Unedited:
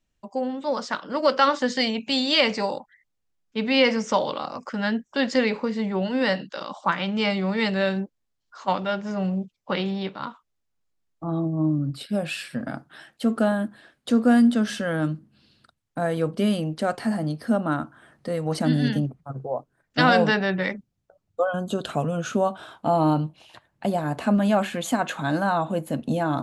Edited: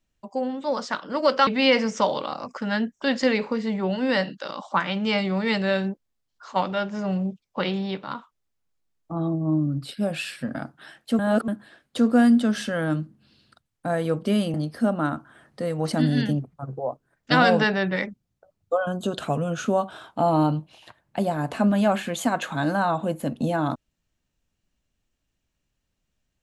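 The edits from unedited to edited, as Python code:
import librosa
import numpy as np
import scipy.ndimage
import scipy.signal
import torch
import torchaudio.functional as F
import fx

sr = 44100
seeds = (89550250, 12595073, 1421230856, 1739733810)

y = fx.edit(x, sr, fx.cut(start_s=1.47, length_s=2.12),
    fx.reverse_span(start_s=13.31, length_s=0.29),
    fx.cut(start_s=16.66, length_s=0.55), tone=tone)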